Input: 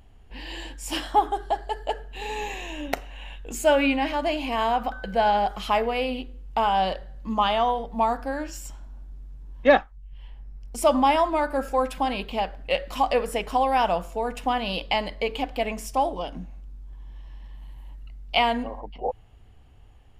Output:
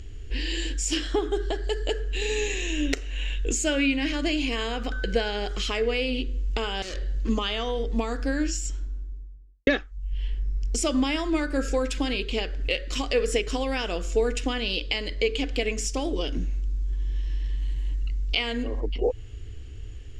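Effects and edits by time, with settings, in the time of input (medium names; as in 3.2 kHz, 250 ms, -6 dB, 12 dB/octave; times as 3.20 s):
0.94–1.64 s: treble shelf 5.6 kHz -7.5 dB
6.82–7.29 s: overload inside the chain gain 35 dB
8.29–9.67 s: studio fade out
whole clip: FFT filter 110 Hz 0 dB, 150 Hz -17 dB, 310 Hz -5 dB, 550 Hz -12 dB, 1.5 kHz +7 dB, 3.9 kHz +10 dB, 7.1 kHz +15 dB, 12 kHz -8 dB; compression 2:1, threshold -35 dBFS; resonant low shelf 620 Hz +11.5 dB, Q 3; trim +2.5 dB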